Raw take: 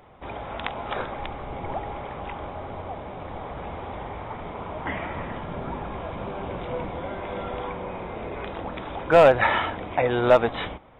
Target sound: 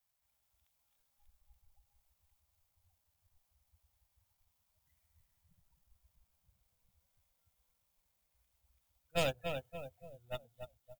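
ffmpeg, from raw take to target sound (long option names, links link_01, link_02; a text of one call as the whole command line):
ffmpeg -i in.wav -filter_complex "[0:a]aeval=exprs='val(0)+0.5*0.0376*sgn(val(0))':channel_layout=same,equalizer=frequency=350:width_type=o:width=1.8:gain=-11.5,bandreject=frequency=50:width_type=h:width=6,bandreject=frequency=100:width_type=h:width=6,bandreject=frequency=150:width_type=h:width=6,bandreject=frequency=200:width_type=h:width=6,bandreject=frequency=250:width_type=h:width=6,bandreject=frequency=300:width_type=h:width=6,bandreject=frequency=350:width_type=h:width=6,bandreject=frequency=400:width_type=h:width=6,bandreject=frequency=450:width_type=h:width=6,bandreject=frequency=500:width_type=h:width=6,asplit=2[link_01][link_02];[link_02]acrusher=bits=4:mix=0:aa=0.000001,volume=-6dB[link_03];[link_01][link_03]amix=inputs=2:normalize=0,acrossover=split=440|3000[link_04][link_05][link_06];[link_05]acompressor=threshold=-34dB:ratio=6[link_07];[link_04][link_07][link_06]amix=inputs=3:normalize=0,agate=range=-39dB:threshold=-20dB:ratio=16:detection=peak,aecho=1:1:287|574|861|1148|1435|1722:0.501|0.241|0.115|0.0554|0.0266|0.0128,afftdn=noise_reduction=25:noise_floor=-52,aemphasis=mode=production:type=75fm,bandreject=frequency=410:width=12,volume=7dB" out.wav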